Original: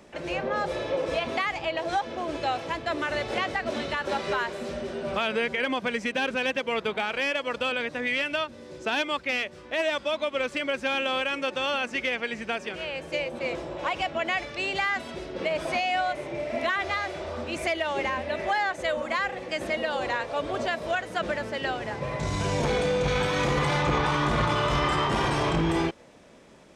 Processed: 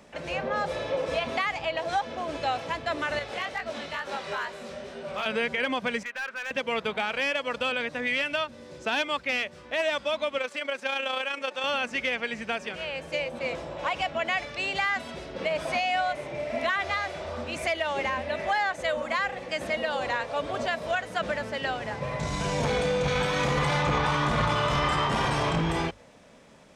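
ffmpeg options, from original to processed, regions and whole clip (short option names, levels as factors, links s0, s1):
-filter_complex "[0:a]asettb=1/sr,asplit=3[s0][s1][s2];[s0]atrim=end=3.194[s3];[s1]atrim=start=3.19:end=5.26,asetpts=PTS-STARTPTS,afade=t=in:d=0.004:c=qsin,afade=t=out:st=2.066:d=0.004:c=qsin,lowshelf=f=370:g=-5.5,flanger=delay=17.5:depth=6.9:speed=2.2,asoftclip=type=hard:threshold=0.0708[s4];[s2]atrim=start=5.256[s5];[s3][s4]acrossfade=d=0.004:c1=hsin:c2=qsin[s6];[s6][s5]acrossfade=d=0.004:c1=qsin:c2=hsin,asettb=1/sr,asplit=3[s7][s8][s9];[s7]atrim=end=6.034[s10];[s8]atrim=start=6.03:end=6.51,asetpts=PTS-STARTPTS,afade=t=in:d=0.004:c=qsin,afade=t=out:st=0.476:d=0.004:c=qsin,bandpass=f=1500:t=q:w=1.7,asoftclip=type=hard:threshold=0.0376[s11];[s9]atrim=start=6.506[s12];[s10][s11]acrossfade=d=0.004:c1=hsin:c2=qsin[s13];[s13][s12]acrossfade=d=0.004:c1=qsin:c2=hsin,asettb=1/sr,asplit=3[s14][s15][s16];[s14]atrim=end=10.384[s17];[s15]atrim=start=10.38:end=11.64,asetpts=PTS-STARTPTS,afade=t=in:d=0.004:c=qsin,afade=t=out:st=1.256:d=0.004:c=qsin,highpass=350,tremolo=f=29:d=0.462[s18];[s16]atrim=start=11.636[s19];[s17][s18]acrossfade=d=0.004:c1=hsin:c2=qsin[s20];[s20][s19]acrossfade=d=0.004:c1=qsin:c2=hsin,equalizer=f=350:w=4:g=-8.5,bandreject=f=50:t=h:w=6,bandreject=f=100:t=h:w=6"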